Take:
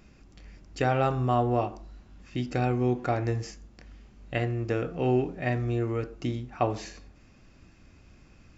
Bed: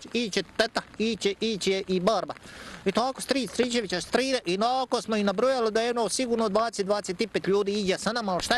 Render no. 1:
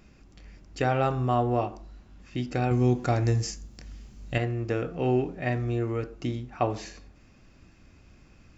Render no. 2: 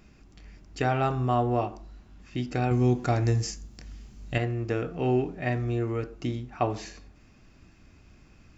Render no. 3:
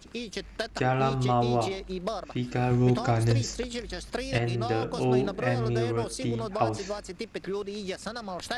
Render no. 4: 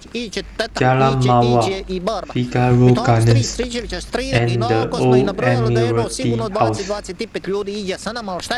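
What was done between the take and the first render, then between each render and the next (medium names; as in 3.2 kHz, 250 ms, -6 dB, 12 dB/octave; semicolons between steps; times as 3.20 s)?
2.71–4.38 s: tone controls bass +6 dB, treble +12 dB
band-stop 530 Hz, Q 12
add bed -8.5 dB
trim +11 dB; peak limiter -2 dBFS, peak gain reduction 2 dB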